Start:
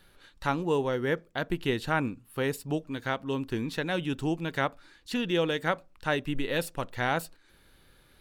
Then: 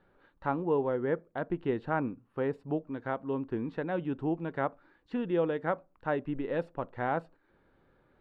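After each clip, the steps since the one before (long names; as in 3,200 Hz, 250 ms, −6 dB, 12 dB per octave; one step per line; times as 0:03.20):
low-pass filter 1,100 Hz 12 dB per octave
low-shelf EQ 110 Hz −12 dB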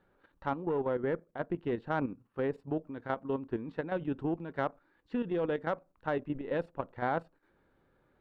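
harmonic generator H 4 −24 dB, 5 −27 dB, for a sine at −15 dBFS
output level in coarse steps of 10 dB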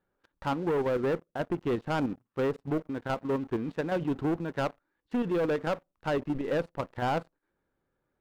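leveller curve on the samples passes 3
level −4 dB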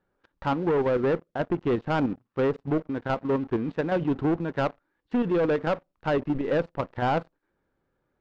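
high-frequency loss of the air 120 metres
level +4.5 dB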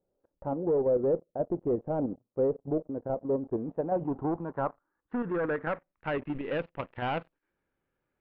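low-pass filter sweep 580 Hz → 2,700 Hz, 0:03.45–0:06.41
level −7.5 dB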